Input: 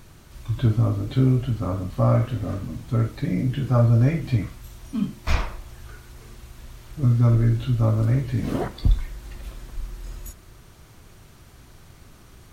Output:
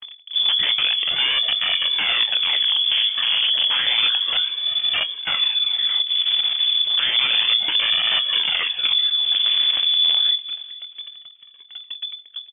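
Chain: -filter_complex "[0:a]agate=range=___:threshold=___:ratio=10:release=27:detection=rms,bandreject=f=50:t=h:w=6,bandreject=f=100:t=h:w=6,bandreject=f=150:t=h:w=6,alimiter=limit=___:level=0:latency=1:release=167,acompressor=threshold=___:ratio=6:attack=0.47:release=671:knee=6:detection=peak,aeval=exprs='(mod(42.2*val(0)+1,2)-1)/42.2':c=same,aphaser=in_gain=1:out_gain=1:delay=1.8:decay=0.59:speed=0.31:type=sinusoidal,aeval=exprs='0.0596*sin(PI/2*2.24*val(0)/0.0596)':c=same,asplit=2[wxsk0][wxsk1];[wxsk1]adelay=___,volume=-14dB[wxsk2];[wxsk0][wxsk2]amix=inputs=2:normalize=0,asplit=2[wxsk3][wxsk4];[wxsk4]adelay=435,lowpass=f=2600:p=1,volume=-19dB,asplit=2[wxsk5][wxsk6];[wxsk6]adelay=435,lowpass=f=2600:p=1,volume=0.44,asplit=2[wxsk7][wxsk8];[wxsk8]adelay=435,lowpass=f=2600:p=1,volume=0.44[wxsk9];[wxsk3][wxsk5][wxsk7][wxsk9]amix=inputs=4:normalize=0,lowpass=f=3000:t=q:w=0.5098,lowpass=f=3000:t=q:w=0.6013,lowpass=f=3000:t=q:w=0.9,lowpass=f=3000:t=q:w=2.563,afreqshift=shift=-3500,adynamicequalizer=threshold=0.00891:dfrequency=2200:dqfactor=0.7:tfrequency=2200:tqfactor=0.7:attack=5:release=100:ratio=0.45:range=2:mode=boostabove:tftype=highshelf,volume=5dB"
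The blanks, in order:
-48dB, -44dB, -11.5dB, -32dB, 24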